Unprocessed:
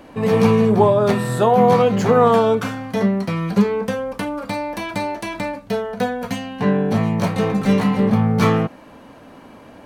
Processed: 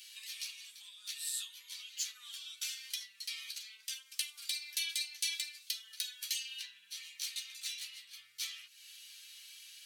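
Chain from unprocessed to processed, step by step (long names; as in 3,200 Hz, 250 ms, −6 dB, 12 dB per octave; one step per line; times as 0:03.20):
multi-voice chorus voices 4, 0.32 Hz, delay 11 ms, depth 5 ms
downward compressor 5 to 1, threshold −32 dBFS, peak gain reduction 17.5 dB
inverse Chebyshev high-pass filter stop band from 770 Hz, stop band 70 dB
level +12.5 dB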